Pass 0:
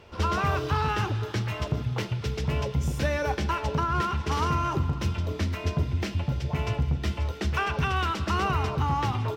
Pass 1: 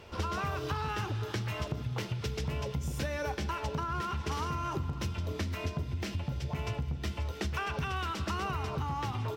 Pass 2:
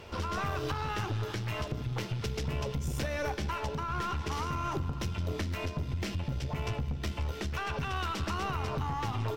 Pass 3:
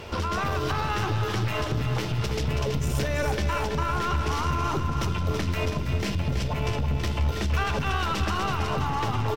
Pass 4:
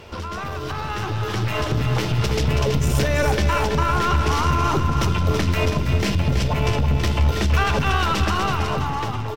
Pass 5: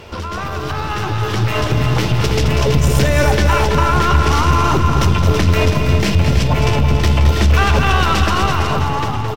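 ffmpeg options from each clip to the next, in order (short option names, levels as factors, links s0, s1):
-af "highshelf=f=5800:g=5.5,acompressor=threshold=0.0282:ratio=6"
-af "alimiter=level_in=1.26:limit=0.0631:level=0:latency=1:release=297,volume=0.794,aeval=exprs='(tanh(31.6*val(0)+0.45)-tanh(0.45))/31.6':c=same,volume=1.78"
-filter_complex "[0:a]alimiter=level_in=1.5:limit=0.0631:level=0:latency=1,volume=0.668,asplit=2[s0][s1];[s1]aecho=0:1:327|654|981|1308|1635|1962|2289:0.447|0.255|0.145|0.0827|0.0472|0.0269|0.0153[s2];[s0][s2]amix=inputs=2:normalize=0,volume=2.66"
-af "dynaudnorm=f=570:g=5:m=2.99,volume=0.75"
-af "aecho=1:1:217:0.422,volume=1.78"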